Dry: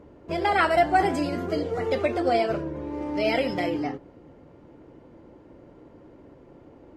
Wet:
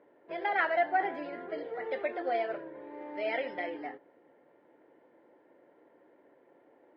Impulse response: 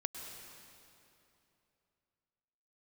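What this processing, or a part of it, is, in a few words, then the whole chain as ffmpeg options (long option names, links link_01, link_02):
phone earpiece: -filter_complex "[0:a]asettb=1/sr,asplit=3[link_01][link_02][link_03];[link_01]atrim=end=0.914[link_04];[link_02]atrim=start=0.91:end=1.58,asetpts=PTS-STARTPTS,afade=type=in:duration=0.004:curve=qsin,afade=type=out:start_time=0.666:duration=0.004:curve=qsin,equalizer=frequency=6400:width_type=o:width=1.3:gain=-5.5[link_05];[link_03]atrim=start=1.576[link_06];[link_04][link_05]acrossfade=duration=0.004:curve1=hsin:curve2=qsin[link_07];[link_07][link_06]acrossfade=duration=0.004:curve1=qsin:curve2=hsin,highpass=480,equalizer=frequency=1200:width_type=q:width=4:gain=-7,equalizer=frequency=1800:width_type=q:width=4:gain=6,equalizer=frequency=2700:width_type=q:width=4:gain=-6,lowpass=frequency=3200:width=0.5412,lowpass=frequency=3200:width=1.3066,volume=-6.5dB"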